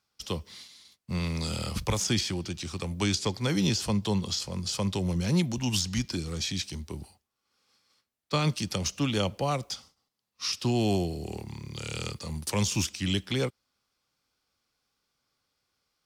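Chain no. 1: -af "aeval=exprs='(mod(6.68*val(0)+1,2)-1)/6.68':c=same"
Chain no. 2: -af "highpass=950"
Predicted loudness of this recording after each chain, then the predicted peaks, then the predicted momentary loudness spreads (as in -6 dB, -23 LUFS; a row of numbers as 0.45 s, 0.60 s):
-30.0 LUFS, -34.0 LUFS; -16.5 dBFS, -13.0 dBFS; 11 LU, 12 LU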